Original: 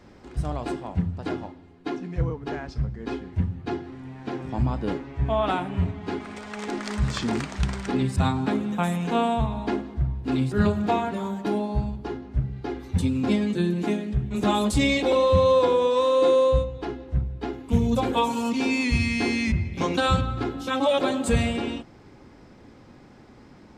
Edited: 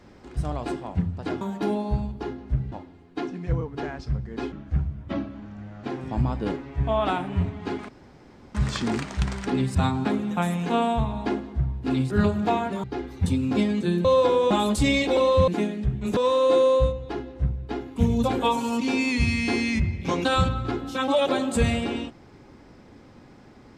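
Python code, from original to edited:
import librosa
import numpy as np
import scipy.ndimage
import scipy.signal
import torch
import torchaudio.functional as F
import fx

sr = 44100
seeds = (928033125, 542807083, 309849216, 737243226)

y = fx.edit(x, sr, fx.speed_span(start_s=3.21, length_s=1.04, speed=0.79),
    fx.room_tone_fill(start_s=6.3, length_s=0.66),
    fx.move(start_s=11.25, length_s=1.31, to_s=1.41),
    fx.swap(start_s=13.77, length_s=0.69, other_s=15.43, other_length_s=0.46), tone=tone)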